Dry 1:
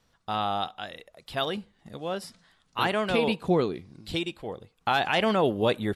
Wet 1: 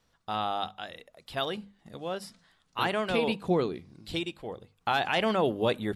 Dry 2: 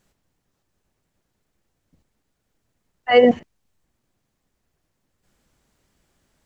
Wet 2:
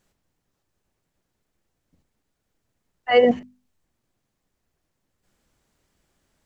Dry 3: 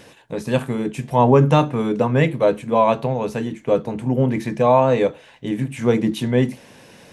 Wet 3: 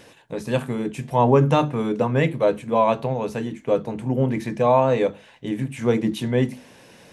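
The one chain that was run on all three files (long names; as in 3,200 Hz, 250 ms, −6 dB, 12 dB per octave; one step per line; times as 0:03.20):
mains-hum notches 50/100/150/200/250 Hz
level −2.5 dB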